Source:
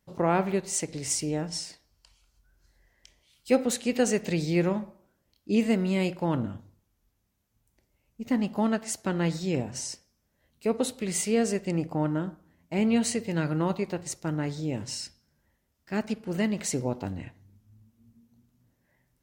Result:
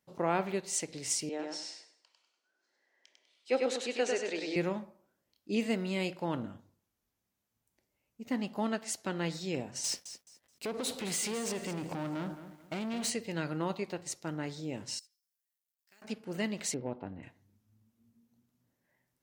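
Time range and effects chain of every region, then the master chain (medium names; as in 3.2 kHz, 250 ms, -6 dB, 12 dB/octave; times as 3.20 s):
1.29–4.56 s: high-pass 300 Hz 24 dB/octave + distance through air 89 m + feedback delay 99 ms, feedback 32%, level -3 dB
9.84–13.10 s: compression 8:1, threshold -32 dBFS + waveshaping leveller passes 3 + bit-crushed delay 214 ms, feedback 35%, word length 9-bit, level -12 dB
14.99–16.02 s: companding laws mixed up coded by A + pre-emphasis filter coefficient 0.97 + compression, threshold -54 dBFS
16.74–17.23 s: hard clipper -18 dBFS + distance through air 440 m
whole clip: high-pass 230 Hz 6 dB/octave; dynamic bell 3.7 kHz, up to +4 dB, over -48 dBFS, Q 1; trim -5 dB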